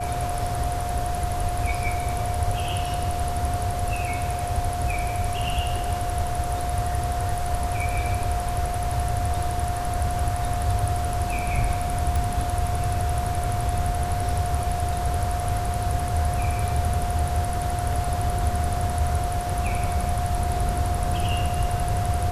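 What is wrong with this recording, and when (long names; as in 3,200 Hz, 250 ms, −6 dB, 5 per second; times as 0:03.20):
whistle 710 Hz −28 dBFS
0:12.16: click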